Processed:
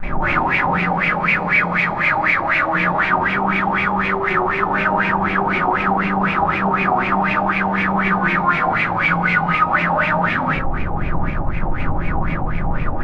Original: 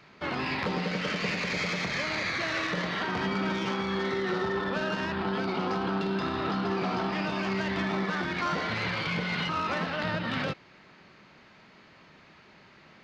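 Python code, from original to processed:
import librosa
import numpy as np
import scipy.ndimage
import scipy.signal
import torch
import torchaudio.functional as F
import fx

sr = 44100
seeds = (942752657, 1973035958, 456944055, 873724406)

y = fx.high_shelf(x, sr, hz=3100.0, db=5.0)
y = fx.schmitt(y, sr, flips_db=-47.0)
y = fx.room_shoebox(y, sr, seeds[0], volume_m3=750.0, walls='furnished', distance_m=8.4)
y = fx.filter_lfo_lowpass(y, sr, shape='sine', hz=4.0, low_hz=790.0, high_hz=2400.0, q=7.2)
y = y * librosa.db_to_amplitude(-4.0)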